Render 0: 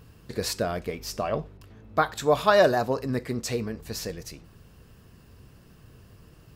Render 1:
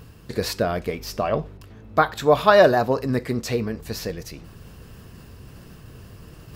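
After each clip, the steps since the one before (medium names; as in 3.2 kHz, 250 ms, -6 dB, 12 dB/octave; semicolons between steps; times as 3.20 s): dynamic bell 8 kHz, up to -8 dB, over -50 dBFS, Q 0.97; reverse; upward compressor, threshold -41 dBFS; reverse; trim +5 dB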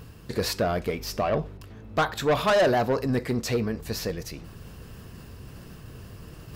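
saturation -17 dBFS, distortion -8 dB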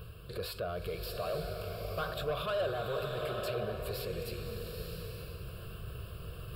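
peak limiter -28.5 dBFS, peak gain reduction 11.5 dB; static phaser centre 1.3 kHz, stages 8; swelling reverb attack 910 ms, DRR 2.5 dB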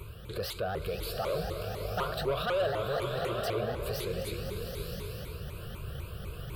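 vibrato with a chosen wave saw up 4 Hz, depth 250 cents; trim +3.5 dB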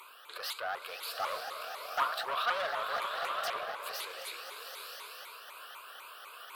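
octave divider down 2 oct, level +3 dB; ladder high-pass 820 Hz, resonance 40%; loudspeaker Doppler distortion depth 0.41 ms; trim +9 dB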